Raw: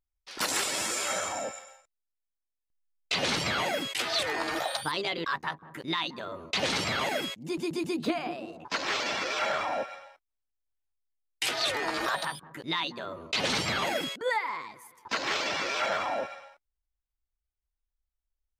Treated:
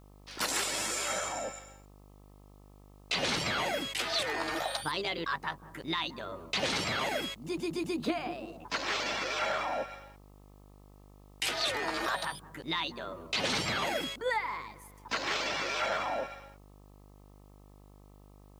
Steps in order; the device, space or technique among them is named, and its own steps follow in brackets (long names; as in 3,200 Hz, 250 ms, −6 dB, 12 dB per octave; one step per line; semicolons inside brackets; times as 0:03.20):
video cassette with head-switching buzz (hum with harmonics 50 Hz, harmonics 26, −53 dBFS −5 dB per octave; white noise bed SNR 37 dB)
level −2.5 dB